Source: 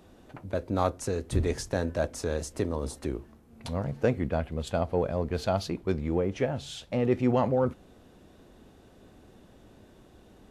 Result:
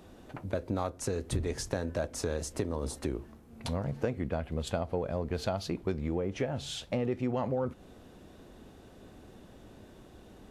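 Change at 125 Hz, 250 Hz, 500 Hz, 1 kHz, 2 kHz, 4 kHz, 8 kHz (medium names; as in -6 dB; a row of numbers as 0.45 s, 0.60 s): -4.0 dB, -4.5 dB, -5.0 dB, -6.0 dB, -4.0 dB, -0.5 dB, 0.0 dB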